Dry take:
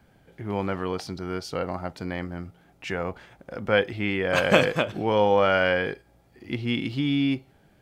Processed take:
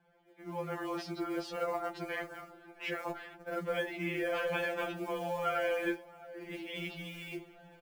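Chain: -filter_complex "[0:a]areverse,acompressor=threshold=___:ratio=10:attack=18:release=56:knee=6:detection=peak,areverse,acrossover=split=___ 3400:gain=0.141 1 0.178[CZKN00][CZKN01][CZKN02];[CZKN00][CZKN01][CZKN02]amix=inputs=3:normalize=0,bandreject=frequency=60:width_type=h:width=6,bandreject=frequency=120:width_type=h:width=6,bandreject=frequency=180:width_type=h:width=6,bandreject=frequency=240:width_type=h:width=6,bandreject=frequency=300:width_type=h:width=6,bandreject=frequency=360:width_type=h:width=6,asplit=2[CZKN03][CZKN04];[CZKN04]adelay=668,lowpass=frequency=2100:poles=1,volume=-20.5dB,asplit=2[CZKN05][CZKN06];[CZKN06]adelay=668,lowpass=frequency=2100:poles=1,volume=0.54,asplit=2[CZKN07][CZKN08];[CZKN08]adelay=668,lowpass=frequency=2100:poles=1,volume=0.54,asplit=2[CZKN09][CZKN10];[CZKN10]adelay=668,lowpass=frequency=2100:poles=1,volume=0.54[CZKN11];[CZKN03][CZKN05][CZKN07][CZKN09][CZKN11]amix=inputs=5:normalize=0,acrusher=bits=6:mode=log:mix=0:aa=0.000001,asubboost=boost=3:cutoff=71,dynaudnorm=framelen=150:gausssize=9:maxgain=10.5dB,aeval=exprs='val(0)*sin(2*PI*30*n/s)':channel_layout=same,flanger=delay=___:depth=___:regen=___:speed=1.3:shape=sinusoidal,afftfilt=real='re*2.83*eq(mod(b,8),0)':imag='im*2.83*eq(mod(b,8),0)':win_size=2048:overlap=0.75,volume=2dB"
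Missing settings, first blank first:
-36dB, 190, 1.1, 2.2, 52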